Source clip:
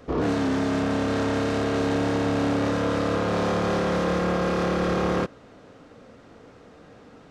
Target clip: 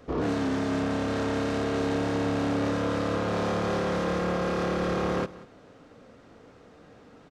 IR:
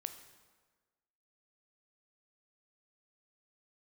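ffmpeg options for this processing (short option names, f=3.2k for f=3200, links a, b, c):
-af "aecho=1:1:187:0.119,volume=-3.5dB"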